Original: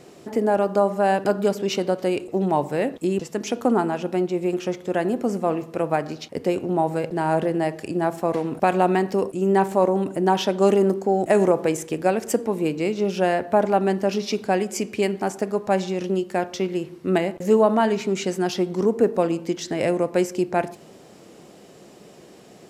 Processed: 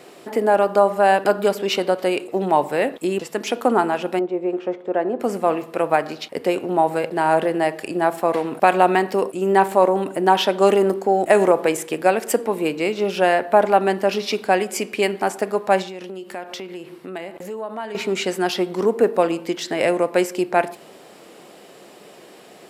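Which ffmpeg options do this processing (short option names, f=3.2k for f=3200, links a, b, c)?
-filter_complex "[0:a]asettb=1/sr,asplit=3[a][b][c];[a]atrim=end=4.194[d];[b]atrim=start=4.19:end=5.2,asetpts=PTS-STARTPTS,afade=t=in:d=0.004:c=qsin,afade=t=out:st=1.006:d=0.004:c=qsin,bandpass=f=450:t=q:w=0.74[e];[c]atrim=start=5.196[f];[d][e]acrossfade=d=0.004:c1=hsin:c2=qsin[g];[g][f]acrossfade=d=0.004:c1=qsin:c2=hsin,asettb=1/sr,asplit=3[h][i][j];[h]atrim=end=15.824[k];[i]atrim=start=15.82:end=17.95,asetpts=PTS-STARTPTS,afade=t=in:d=0.004:c=qsin,afade=t=out:st=2.126:d=0.004:c=qsin,acompressor=threshold=-32dB:ratio=4:attack=3.2:release=140:knee=1:detection=peak[l];[j]atrim=start=17.946[m];[k][l]acrossfade=d=0.004:c1=hsin:c2=qsin[n];[n][m]acrossfade=d=0.004:c1=qsin:c2=hsin,highpass=f=650:p=1,equalizer=f=6.2k:w=1.9:g=-8,volume=7.5dB"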